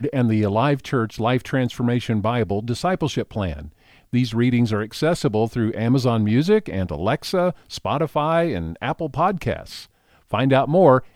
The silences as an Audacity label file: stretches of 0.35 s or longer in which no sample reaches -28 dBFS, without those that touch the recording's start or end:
3.650000	4.130000	silence
9.800000	10.330000	silence